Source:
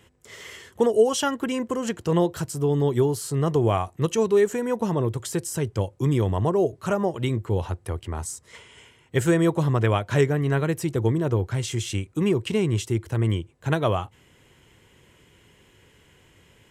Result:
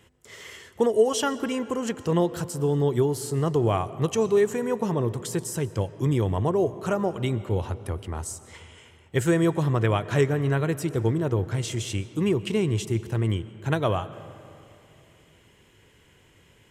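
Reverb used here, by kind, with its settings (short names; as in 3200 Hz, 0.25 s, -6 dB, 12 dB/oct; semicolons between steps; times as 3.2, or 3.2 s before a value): digital reverb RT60 2.8 s, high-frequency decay 0.55×, pre-delay 85 ms, DRR 15 dB; gain -1.5 dB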